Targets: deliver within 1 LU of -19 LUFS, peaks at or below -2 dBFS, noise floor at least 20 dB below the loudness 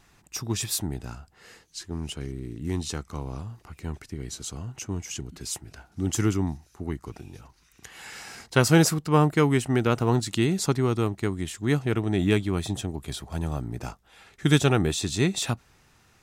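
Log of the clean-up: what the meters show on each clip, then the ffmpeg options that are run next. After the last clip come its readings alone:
loudness -26.5 LUFS; peak -5.5 dBFS; loudness target -19.0 LUFS
-> -af "volume=7.5dB,alimiter=limit=-2dB:level=0:latency=1"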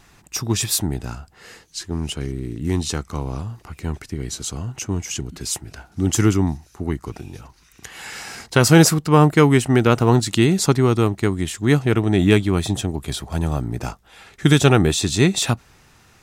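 loudness -19.5 LUFS; peak -2.0 dBFS; noise floor -54 dBFS

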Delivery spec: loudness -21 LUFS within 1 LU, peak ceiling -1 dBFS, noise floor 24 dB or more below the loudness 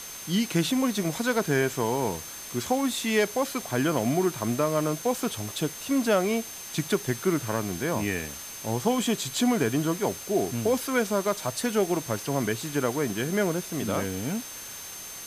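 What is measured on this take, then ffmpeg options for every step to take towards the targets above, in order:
steady tone 6300 Hz; tone level -42 dBFS; noise floor -40 dBFS; noise floor target -52 dBFS; loudness -27.5 LUFS; peak -11.0 dBFS; loudness target -21.0 LUFS
-> -af "bandreject=f=6.3k:w=30"
-af "afftdn=nr=12:nf=-40"
-af "volume=6.5dB"

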